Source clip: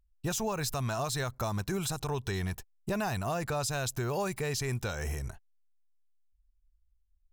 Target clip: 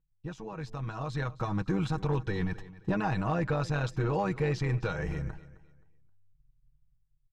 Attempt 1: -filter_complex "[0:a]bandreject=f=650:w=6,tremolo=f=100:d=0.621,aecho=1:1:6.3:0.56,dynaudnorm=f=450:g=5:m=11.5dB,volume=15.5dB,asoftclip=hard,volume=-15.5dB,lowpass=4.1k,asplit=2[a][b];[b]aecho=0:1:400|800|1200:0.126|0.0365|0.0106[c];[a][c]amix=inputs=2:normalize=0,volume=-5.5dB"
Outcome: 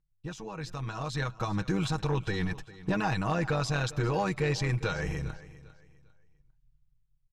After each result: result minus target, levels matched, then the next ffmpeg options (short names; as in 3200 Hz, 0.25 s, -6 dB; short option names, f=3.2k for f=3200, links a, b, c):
echo 0.137 s late; 4000 Hz band +7.0 dB
-filter_complex "[0:a]bandreject=f=650:w=6,tremolo=f=100:d=0.621,aecho=1:1:6.3:0.56,dynaudnorm=f=450:g=5:m=11.5dB,volume=15.5dB,asoftclip=hard,volume=-15.5dB,lowpass=4.1k,asplit=2[a][b];[b]aecho=0:1:263|526|789:0.126|0.0365|0.0106[c];[a][c]amix=inputs=2:normalize=0,volume=-5.5dB"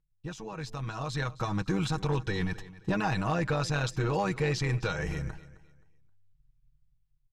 4000 Hz band +6.5 dB
-filter_complex "[0:a]bandreject=f=650:w=6,tremolo=f=100:d=0.621,aecho=1:1:6.3:0.56,dynaudnorm=f=450:g=5:m=11.5dB,volume=15.5dB,asoftclip=hard,volume=-15.5dB,lowpass=4.1k,highshelf=f=2.7k:g=-11,asplit=2[a][b];[b]aecho=0:1:263|526|789:0.126|0.0365|0.0106[c];[a][c]amix=inputs=2:normalize=0,volume=-5.5dB"